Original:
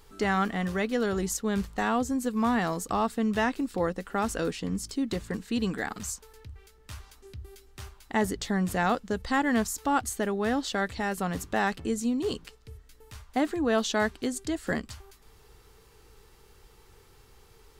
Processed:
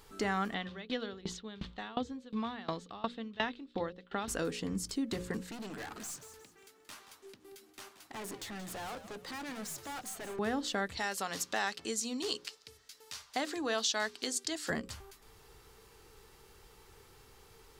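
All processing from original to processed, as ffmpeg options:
-filter_complex "[0:a]asettb=1/sr,asplit=3[s0][s1][s2];[s0]atrim=end=0.544[s3];[s1]atrim=start=0.54:end=4.28,asetpts=PTS-STARTPTS,afade=t=in:d=0.004:c=qsin,afade=t=out:st=3.736:d=0.004:c=qsin,lowpass=f=3600:t=q:w=4.2,aeval=exprs='val(0)*pow(10,-26*if(lt(mod(2.8*n/s,1),2*abs(2.8)/1000),1-mod(2.8*n/s,1)/(2*abs(2.8)/1000),(mod(2.8*n/s,1)-2*abs(2.8)/1000)/(1-2*abs(2.8)/1000))/20)':c=same[s4];[s2]atrim=start=4.276[s5];[s3][s4]acrossfade=d=0.004:c1=hsin:c2=qsin[s6];[s6][s5]acrossfade=d=0.004:c1=qsin:c2=hsin,asettb=1/sr,asplit=3[s7][s8][s9];[s7]atrim=end=5.514[s10];[s8]atrim=start=5.51:end=10.39,asetpts=PTS-STARTPTS,afade=t=in:d=0.004:c=qsin,afade=t=out:st=4.876:d=0.004:c=qsin,highpass=f=220:w=0.5412,highpass=f=220:w=1.3066,aeval=exprs='(tanh(100*val(0)+0.35)-tanh(0.35))/100':c=same,asplit=5[s11][s12][s13][s14][s15];[s12]adelay=178,afreqshift=-84,volume=0.237[s16];[s13]adelay=356,afreqshift=-168,volume=0.0881[s17];[s14]adelay=534,afreqshift=-252,volume=0.0324[s18];[s15]adelay=712,afreqshift=-336,volume=0.012[s19];[s11][s16][s17][s18][s19]amix=inputs=5:normalize=0,atrim=end_sample=215208[s20];[s9]atrim=start=10.386[s21];[s10][s20]acrossfade=d=0.004:c1=hsin:c2=qsin[s22];[s22][s21]acrossfade=d=0.004:c1=qsin:c2=hsin,asettb=1/sr,asplit=3[s23][s24][s25];[s23]atrim=end=10.974[s26];[s24]atrim=start=10.97:end=14.7,asetpts=PTS-STARTPTS,afade=t=in:d=0.004:c=qsin,afade=t=out:st=3.726:d=0.004:c=qsin,highpass=f=600:p=1,equalizer=f=5000:w=0.9:g=10.5[s27];[s25]atrim=start=14.696[s28];[s26][s27]acrossfade=d=0.004:c1=hsin:c2=qsin[s29];[s29][s28]acrossfade=d=0.004:c1=qsin:c2=hsin,lowshelf=f=72:g=-7,bandreject=f=60:t=h:w=6,bandreject=f=120:t=h:w=6,bandreject=f=180:t=h:w=6,bandreject=f=240:t=h:w=6,bandreject=f=300:t=h:w=6,bandreject=f=360:t=h:w=6,bandreject=f=420:t=h:w=6,bandreject=f=480:t=h:w=6,bandreject=f=540:t=h:w=6,acompressor=threshold=0.02:ratio=2"

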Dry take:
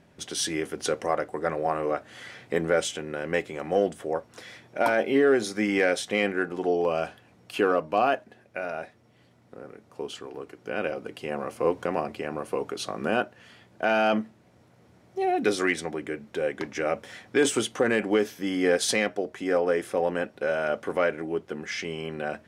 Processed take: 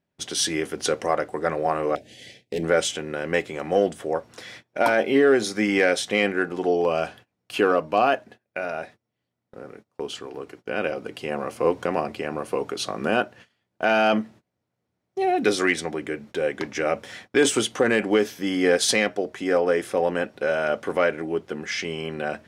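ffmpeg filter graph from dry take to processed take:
-filter_complex "[0:a]asettb=1/sr,asplit=3[s0][s1][s2];[s0]atrim=end=1.954[s3];[s1]atrim=start=1.95:end=2.63,asetpts=PTS-STARTPTS,afade=t=in:d=0.004:c=qsin,afade=t=out:st=0.676:d=0.004:c=qsin,volume=15.8,asoftclip=hard,volume=0.0631,asuperstop=centerf=1200:order=4:qfactor=0.68[s4];[s2]atrim=start=2.626[s5];[s3][s4]acrossfade=d=0.004:c1=hsin:c2=qsin[s6];[s6][s5]acrossfade=d=0.004:c1=qsin:c2=hsin,agate=range=0.0562:threshold=0.00447:ratio=16:detection=peak,equalizer=f=4300:t=o:w=1.6:g=2.5,volume=1.41"

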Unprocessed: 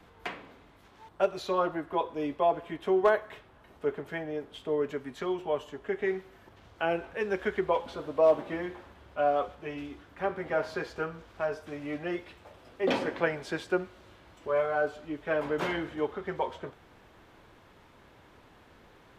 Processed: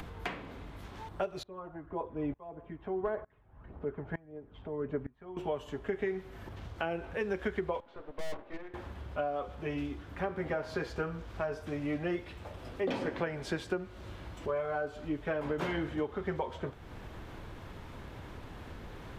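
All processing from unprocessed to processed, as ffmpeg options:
-filter_complex "[0:a]asettb=1/sr,asplit=3[s0][s1][s2];[s0]atrim=end=1.434[s3];[s1]atrim=start=1.43:end=5.37,asetpts=PTS-STARTPTS,afade=t=in:d=0.004:c=qsin,afade=t=out:st=3.936:d=0.004:c=qsin,lowpass=1600,aphaser=in_gain=1:out_gain=1:delay=1.4:decay=0.38:speed=1.7:type=triangular,aeval=exprs='val(0)*pow(10,-26*if(lt(mod(-1.1*n/s,1),2*abs(-1.1)/1000),1-mod(-1.1*n/s,1)/(2*abs(-1.1)/1000),(mod(-1.1*n/s,1)-2*abs(-1.1)/1000)/(1-2*abs(-1.1)/1000))/20)':c=same[s4];[s2]atrim=start=5.366[s5];[s3][s4]acrossfade=d=0.004:c1=hsin:c2=qsin[s6];[s6][s5]acrossfade=d=0.004:c1=qsin:c2=hsin,asettb=1/sr,asplit=3[s7][s8][s9];[s7]atrim=end=7.804[s10];[s8]atrim=start=7.8:end=8.74,asetpts=PTS-STARTPTS,afade=t=in:d=0.004:c=qsin,afade=t=out:st=0.936:d=0.004:c=qsin,agate=range=0.398:threshold=0.0224:ratio=16:release=100:detection=peak,highpass=370,lowpass=2600,aeval=exprs='(tanh(100*val(0)+0.75)-tanh(0.75))/100':c=same[s11];[s9]atrim=start=8.736[s12];[s10][s11]acrossfade=d=0.004:c1=hsin:c2=qsin[s13];[s13][s12]acrossfade=d=0.004:c1=qsin:c2=hsin,acompressor=threshold=0.0282:ratio=12,lowshelf=f=170:g=12,acompressor=mode=upward:threshold=0.0141:ratio=2.5"

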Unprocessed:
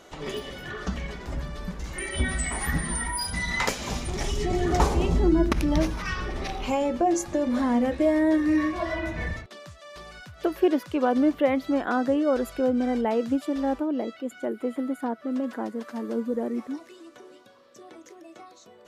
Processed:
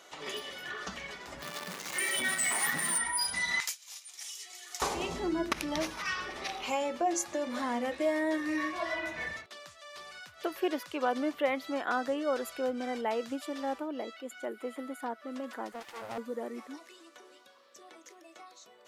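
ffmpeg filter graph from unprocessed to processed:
-filter_complex "[0:a]asettb=1/sr,asplit=3[s0][s1][s2];[s0]atrim=end=1.424[s3];[s1]atrim=start=1.42:end=2.98,asetpts=PTS-STARTPTS,afade=t=in:d=0.004:c=qsin,afade=t=out:st=1.556:d=0.004:c=qsin,aeval=exprs='val(0)+0.5*0.0282*sgn(val(0))':c=same,highpass=f=120:w=0.5412,highpass=f=120:w=1.3066[s4];[s2]atrim=start=2.976[s5];[s3][s4]acrossfade=d=0.004:c1=hsin:c2=qsin[s6];[s6][s5]acrossfade=d=0.004:c1=qsin:c2=hsin,asettb=1/sr,asplit=3[s7][s8][s9];[s7]atrim=end=3.604[s10];[s8]atrim=start=3.6:end=4.82,asetpts=PTS-STARTPTS,afade=t=in:d=0.004:c=qsin,afade=t=out:st=1.216:d=0.004:c=qsin,agate=range=0.0224:threshold=0.0501:ratio=3:release=100:detection=peak,highpass=f=650:p=1,aderivative[s11];[s9]atrim=start=4.816[s12];[s10][s11]acrossfade=d=0.004:c1=hsin:c2=qsin[s13];[s13][s12]acrossfade=d=0.004:c1=qsin:c2=hsin,asettb=1/sr,asplit=3[s14][s15][s16];[s14]atrim=end=15.724[s17];[s15]atrim=start=15.72:end=16.18,asetpts=PTS-STARTPTS,afade=t=in:d=0.004:c=qsin,afade=t=out:st=0.456:d=0.004:c=qsin,equalizer=f=290:t=o:w=0.39:g=9.5,aeval=exprs='abs(val(0))':c=same[s18];[s16]atrim=start=16.176[s19];[s17][s18]acrossfade=d=0.004:c1=hsin:c2=qsin[s20];[s20][s19]acrossfade=d=0.004:c1=qsin:c2=hsin,highpass=f=1100:p=1,bandreject=f=1600:w=29"

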